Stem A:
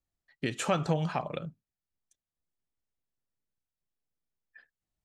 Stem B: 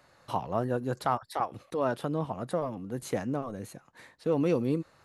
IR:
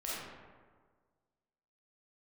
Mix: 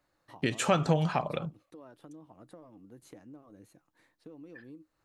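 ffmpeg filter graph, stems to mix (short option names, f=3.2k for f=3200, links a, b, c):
-filter_complex "[0:a]volume=2.5dB[a];[1:a]equalizer=f=310:w=7.2:g=13,acompressor=threshold=-31dB:ratio=6,volume=-16dB[b];[a][b]amix=inputs=2:normalize=0"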